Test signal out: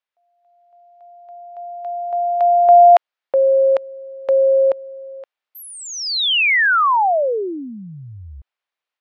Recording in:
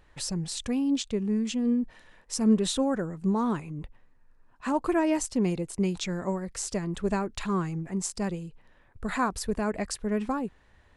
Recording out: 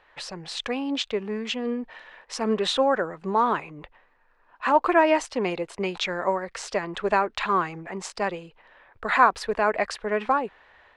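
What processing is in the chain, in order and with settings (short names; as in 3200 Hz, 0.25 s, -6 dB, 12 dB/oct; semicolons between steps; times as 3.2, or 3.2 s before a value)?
three-band isolator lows -21 dB, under 470 Hz, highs -23 dB, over 4000 Hz; AGC gain up to 4 dB; gain +7.5 dB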